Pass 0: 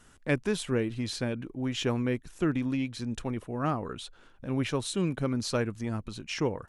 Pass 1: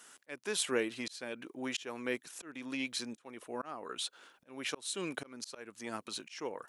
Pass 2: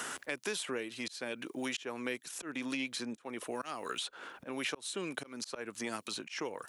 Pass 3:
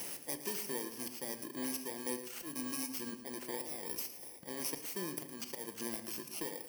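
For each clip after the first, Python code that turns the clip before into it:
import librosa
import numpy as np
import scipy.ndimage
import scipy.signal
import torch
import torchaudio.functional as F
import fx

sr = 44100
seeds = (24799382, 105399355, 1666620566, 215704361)

y1 = scipy.signal.sosfilt(scipy.signal.butter(2, 320.0, 'highpass', fs=sr, output='sos'), x)
y1 = fx.tilt_eq(y1, sr, slope=2.0)
y1 = fx.auto_swell(y1, sr, attack_ms=414.0)
y1 = y1 * 10.0 ** (1.0 / 20.0)
y2 = fx.band_squash(y1, sr, depth_pct=100)
y3 = fx.bit_reversed(y2, sr, seeds[0], block=32)
y3 = fx.echo_feedback(y3, sr, ms=112, feedback_pct=35, wet_db=-12.5)
y3 = fx.room_shoebox(y3, sr, seeds[1], volume_m3=720.0, walls='furnished', distance_m=0.85)
y3 = y3 * 10.0 ** (-2.5 / 20.0)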